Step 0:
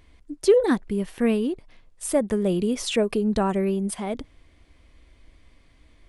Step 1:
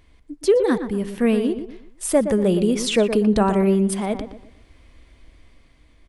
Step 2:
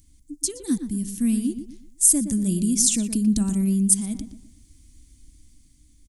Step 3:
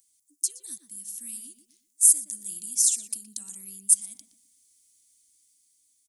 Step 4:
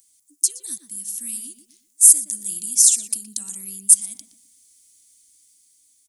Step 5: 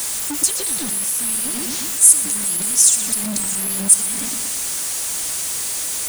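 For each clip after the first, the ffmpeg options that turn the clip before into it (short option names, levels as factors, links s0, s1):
-filter_complex "[0:a]dynaudnorm=f=300:g=7:m=1.68,asplit=2[s0][s1];[s1]adelay=119,lowpass=f=2100:p=1,volume=0.355,asplit=2[s2][s3];[s3]adelay=119,lowpass=f=2100:p=1,volume=0.35,asplit=2[s4][s5];[s5]adelay=119,lowpass=f=2100:p=1,volume=0.35,asplit=2[s6][s7];[s7]adelay=119,lowpass=f=2100:p=1,volume=0.35[s8];[s2][s4][s6][s8]amix=inputs=4:normalize=0[s9];[s0][s9]amix=inputs=2:normalize=0"
-af "firequalizer=gain_entry='entry(300,0);entry(430,-25);entry(6600,14)':delay=0.05:min_phase=1,volume=0.841"
-filter_complex "[0:a]aderivative,acrossover=split=190|3000[s0][s1][s2];[s1]acompressor=threshold=0.00126:ratio=1.5[s3];[s0][s3][s2]amix=inputs=3:normalize=0,volume=0.794"
-af "apsyclip=2.99,volume=0.841"
-af "aeval=exprs='val(0)+0.5*0.141*sgn(val(0))':c=same,volume=0.891"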